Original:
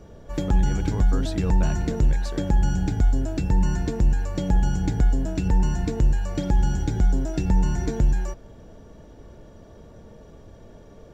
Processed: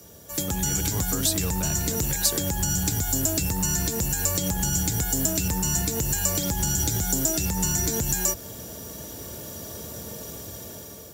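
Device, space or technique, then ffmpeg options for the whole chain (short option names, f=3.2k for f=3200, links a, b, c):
FM broadcast chain: -filter_complex "[0:a]highpass=f=68:w=0.5412,highpass=f=68:w=1.3066,dynaudnorm=f=370:g=5:m=11dB,acrossover=split=92|590[a][b][c];[a]acompressor=threshold=-22dB:ratio=4[d];[b]acompressor=threshold=-22dB:ratio=4[e];[c]acompressor=threshold=-32dB:ratio=4[f];[d][e][f]amix=inputs=3:normalize=0,aemphasis=mode=production:type=75fm,alimiter=limit=-14.5dB:level=0:latency=1:release=89,asoftclip=type=hard:threshold=-18dB,lowpass=f=15k:w=0.5412,lowpass=f=15k:w=1.3066,aemphasis=mode=production:type=75fm,volume=-2.5dB"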